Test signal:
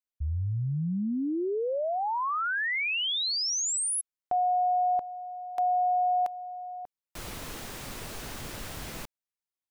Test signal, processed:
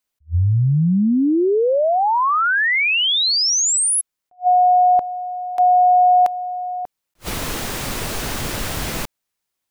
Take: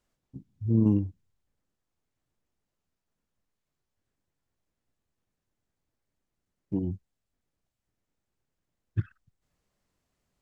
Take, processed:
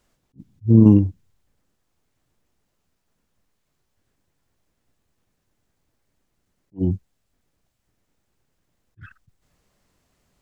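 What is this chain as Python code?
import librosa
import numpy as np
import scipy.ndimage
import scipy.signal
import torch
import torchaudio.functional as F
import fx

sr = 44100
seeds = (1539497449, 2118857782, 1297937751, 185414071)

p1 = fx.rider(x, sr, range_db=3, speed_s=2.0)
p2 = x + F.gain(torch.from_numpy(p1), 1.0).numpy()
p3 = fx.attack_slew(p2, sr, db_per_s=400.0)
y = F.gain(torch.from_numpy(p3), 6.0).numpy()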